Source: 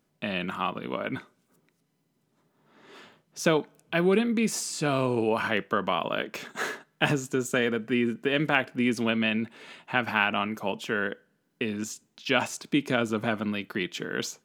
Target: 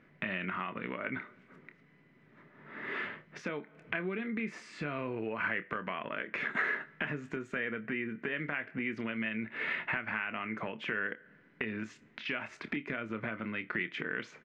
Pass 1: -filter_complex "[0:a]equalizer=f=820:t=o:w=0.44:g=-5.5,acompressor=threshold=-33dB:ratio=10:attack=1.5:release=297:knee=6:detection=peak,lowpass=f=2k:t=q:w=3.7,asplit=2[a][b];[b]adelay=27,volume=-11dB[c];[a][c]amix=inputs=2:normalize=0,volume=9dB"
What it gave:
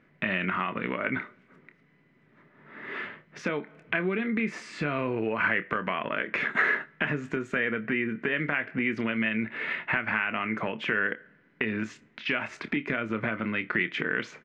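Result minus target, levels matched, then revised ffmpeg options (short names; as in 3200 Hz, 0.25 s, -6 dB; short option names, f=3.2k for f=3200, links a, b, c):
compressor: peak gain reduction -7.5 dB
-filter_complex "[0:a]equalizer=f=820:t=o:w=0.44:g=-5.5,acompressor=threshold=-41.5dB:ratio=10:attack=1.5:release=297:knee=6:detection=peak,lowpass=f=2k:t=q:w=3.7,asplit=2[a][b];[b]adelay=27,volume=-11dB[c];[a][c]amix=inputs=2:normalize=0,volume=9dB"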